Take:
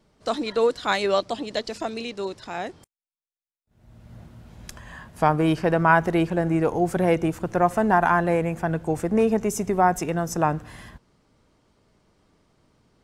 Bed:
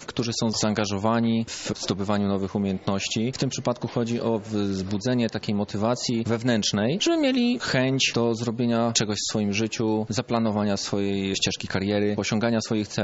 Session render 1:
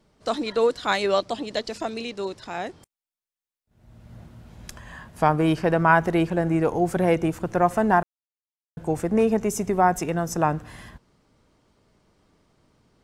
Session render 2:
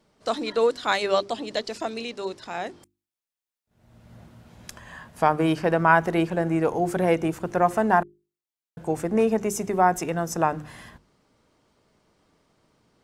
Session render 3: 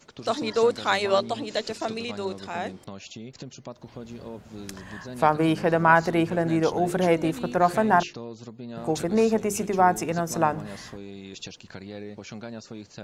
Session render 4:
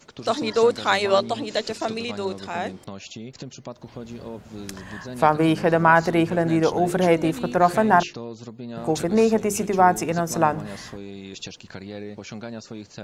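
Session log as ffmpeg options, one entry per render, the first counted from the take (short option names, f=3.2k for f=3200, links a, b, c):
-filter_complex "[0:a]asplit=3[a][b][c];[a]atrim=end=8.03,asetpts=PTS-STARTPTS,afade=t=out:st=8.026:d=0.004:c=hsin[d];[b]atrim=start=8.03:end=8.77,asetpts=PTS-STARTPTS,volume=0[e];[c]atrim=start=8.77,asetpts=PTS-STARTPTS,afade=t=in:d=0.004:c=hsin[f];[d][e][f]concat=n=3:v=0:a=1"
-af "lowshelf=f=110:g=-8,bandreject=f=50:t=h:w=6,bandreject=f=100:t=h:w=6,bandreject=f=150:t=h:w=6,bandreject=f=200:t=h:w=6,bandreject=f=250:t=h:w=6,bandreject=f=300:t=h:w=6,bandreject=f=350:t=h:w=6,bandreject=f=400:t=h:w=6"
-filter_complex "[1:a]volume=-15dB[a];[0:a][a]amix=inputs=2:normalize=0"
-af "volume=3dB,alimiter=limit=-3dB:level=0:latency=1"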